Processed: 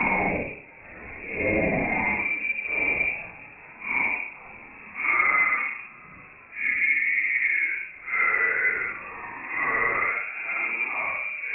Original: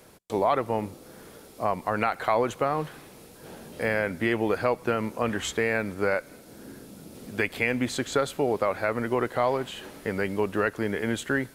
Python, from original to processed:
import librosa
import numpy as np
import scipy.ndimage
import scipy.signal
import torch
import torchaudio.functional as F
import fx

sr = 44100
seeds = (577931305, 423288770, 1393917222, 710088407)

y = fx.paulstretch(x, sr, seeds[0], factor=6.7, window_s=0.05, from_s=7.4)
y = fx.echo_feedback(y, sr, ms=61, feedback_pct=49, wet_db=-12.5)
y = fx.freq_invert(y, sr, carrier_hz=2600)